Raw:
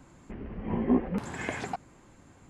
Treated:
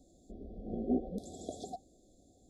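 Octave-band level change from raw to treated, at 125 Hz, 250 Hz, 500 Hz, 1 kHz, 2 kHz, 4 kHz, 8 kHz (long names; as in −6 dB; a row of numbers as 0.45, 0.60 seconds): −11.0 dB, −7.5 dB, −5.5 dB, −10.0 dB, below −40 dB, −8.5 dB, −5.0 dB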